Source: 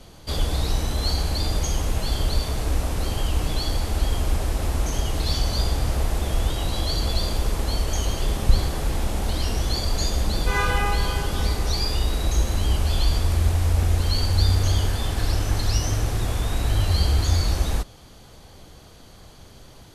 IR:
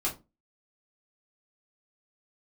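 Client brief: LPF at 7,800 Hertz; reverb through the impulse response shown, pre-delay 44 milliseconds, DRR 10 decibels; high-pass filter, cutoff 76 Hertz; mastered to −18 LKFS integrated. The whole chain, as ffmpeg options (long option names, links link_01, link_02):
-filter_complex "[0:a]highpass=76,lowpass=7800,asplit=2[link_01][link_02];[1:a]atrim=start_sample=2205,adelay=44[link_03];[link_02][link_03]afir=irnorm=-1:irlink=0,volume=-16dB[link_04];[link_01][link_04]amix=inputs=2:normalize=0,volume=8.5dB"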